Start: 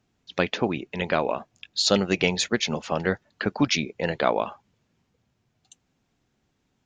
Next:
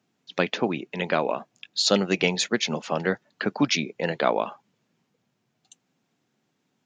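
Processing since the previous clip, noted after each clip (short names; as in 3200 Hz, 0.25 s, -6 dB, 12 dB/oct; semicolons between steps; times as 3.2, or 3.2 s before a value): HPF 140 Hz 24 dB/oct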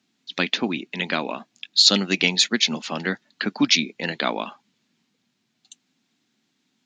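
graphic EQ 125/250/500/2000/4000/8000 Hz -5/+8/-6/+4/+10/+5 dB; gain -2 dB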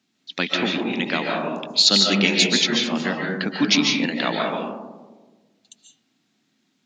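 digital reverb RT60 1.3 s, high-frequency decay 0.25×, pre-delay 0.105 s, DRR -1 dB; gain -1 dB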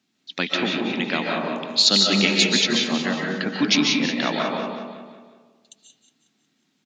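feedback echo 0.182 s, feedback 46%, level -9.5 dB; gain -1 dB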